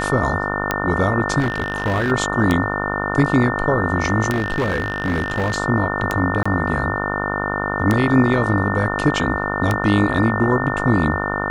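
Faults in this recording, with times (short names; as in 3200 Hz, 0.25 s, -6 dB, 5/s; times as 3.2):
buzz 50 Hz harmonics 29 -24 dBFS
tick 33 1/3 rpm -4 dBFS
tone 1800 Hz -25 dBFS
1.39–2.12 clipped -15 dBFS
4.3–5.58 clipped -15.5 dBFS
6.43–6.46 gap 25 ms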